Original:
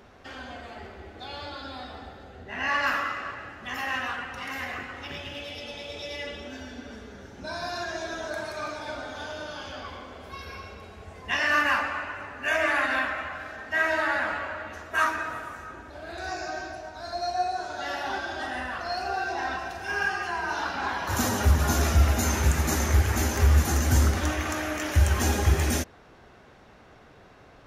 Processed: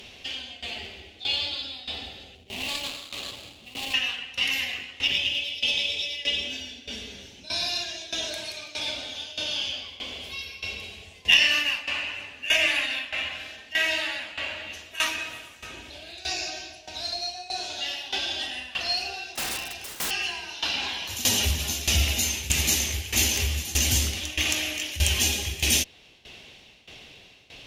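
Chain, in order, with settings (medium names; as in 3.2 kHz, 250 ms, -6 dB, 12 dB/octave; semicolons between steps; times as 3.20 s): 2.35–3.94 s: median filter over 25 samples; in parallel at +1 dB: compression 6:1, threshold -39 dBFS, peak gain reduction 22 dB; on the sum: resonant high shelf 2 kHz +12.5 dB, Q 3; 19.35–20.11 s: integer overflow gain 18.5 dB; tremolo saw down 1.6 Hz, depth 85%; Chebyshev shaper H 2 -12 dB, 4 -19 dB, 6 -32 dB, 8 -35 dB, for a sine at 0 dBFS; trim -4 dB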